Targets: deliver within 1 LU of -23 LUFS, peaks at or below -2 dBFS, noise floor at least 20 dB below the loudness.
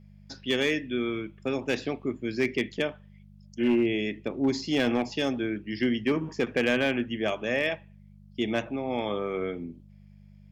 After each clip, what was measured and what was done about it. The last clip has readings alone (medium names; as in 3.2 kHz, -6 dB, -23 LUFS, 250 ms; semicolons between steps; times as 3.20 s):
clipped samples 0.5%; clipping level -17.5 dBFS; hum 50 Hz; highest harmonic 200 Hz; hum level -49 dBFS; loudness -28.5 LUFS; peak level -17.5 dBFS; loudness target -23.0 LUFS
-> clip repair -17.5 dBFS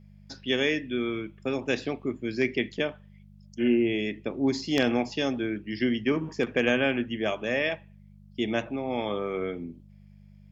clipped samples 0.0%; hum 50 Hz; highest harmonic 200 Hz; hum level -49 dBFS
-> de-hum 50 Hz, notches 4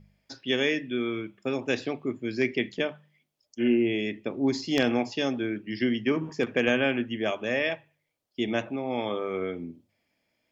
hum not found; loudness -28.5 LUFS; peak level -8.5 dBFS; loudness target -23.0 LUFS
-> trim +5.5 dB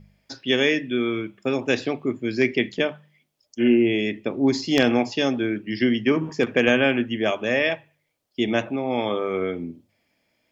loudness -23.0 LUFS; peak level -3.0 dBFS; noise floor -73 dBFS